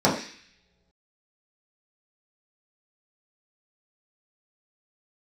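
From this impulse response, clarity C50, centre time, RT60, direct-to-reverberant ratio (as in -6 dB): 7.0 dB, 30 ms, no single decay rate, -7.0 dB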